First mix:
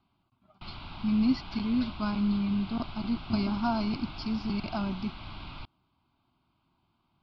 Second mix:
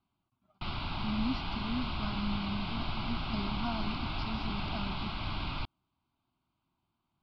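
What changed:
speech −8.5 dB
background +6.5 dB

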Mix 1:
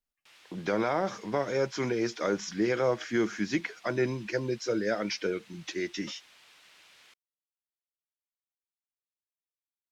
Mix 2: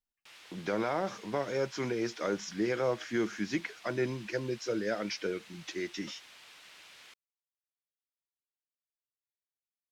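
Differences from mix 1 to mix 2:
speech −3.5 dB
background +3.5 dB

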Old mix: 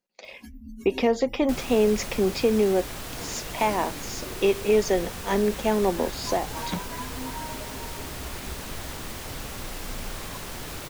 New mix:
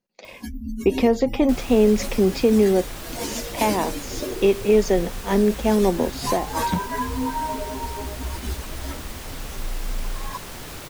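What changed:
speech: add low-shelf EQ 310 Hz +10 dB
first sound +11.0 dB

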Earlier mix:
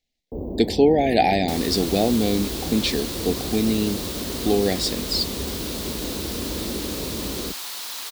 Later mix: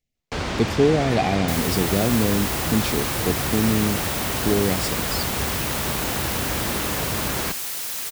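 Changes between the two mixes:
first sound: remove inverse Chebyshev band-stop filter 1,400–7,700 Hz, stop band 60 dB
second sound +6.5 dB
master: add octave-band graphic EQ 125/250/1,000/4,000 Hz +10/−3/−9/−10 dB

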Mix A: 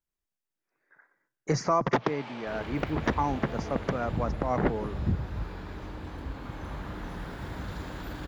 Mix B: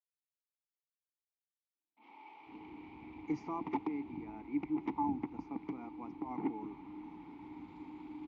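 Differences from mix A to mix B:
speech: entry +1.80 s
master: add formant filter u

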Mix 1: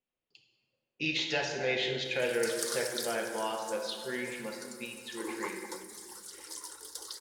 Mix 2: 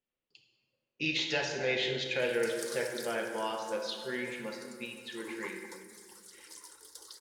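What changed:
background −7.0 dB
master: add parametric band 730 Hz −4 dB 0.21 octaves

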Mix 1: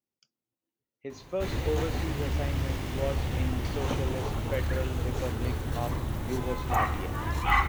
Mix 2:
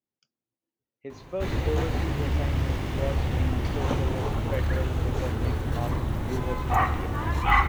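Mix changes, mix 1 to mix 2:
background +4.0 dB
master: add high-shelf EQ 4,400 Hz −8 dB

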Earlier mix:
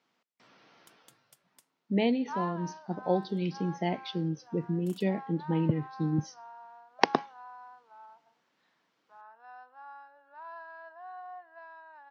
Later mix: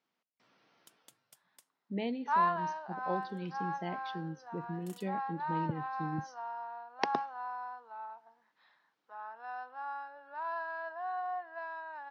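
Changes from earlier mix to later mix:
speech −9.0 dB
second sound +7.5 dB

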